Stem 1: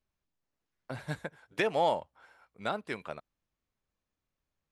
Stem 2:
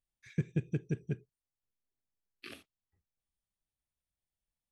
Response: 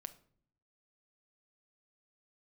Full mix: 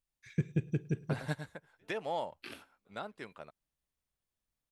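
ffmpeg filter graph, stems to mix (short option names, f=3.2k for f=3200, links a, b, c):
-filter_complex "[0:a]bandreject=f=2.3k:w=25,adelay=200,volume=1dB,asplit=2[a][b];[b]volume=-9.5dB[c];[1:a]volume=-1dB,asplit=4[d][e][f][g];[e]volume=-9dB[h];[f]volume=-24dB[i];[g]apad=whole_len=216823[j];[a][j]sidechaingate=range=-46dB:threshold=-58dB:ratio=16:detection=peak[k];[2:a]atrim=start_sample=2205[l];[h][l]afir=irnorm=-1:irlink=0[m];[c][i]amix=inputs=2:normalize=0,aecho=0:1:106:1[n];[k][d][m][n]amix=inputs=4:normalize=0"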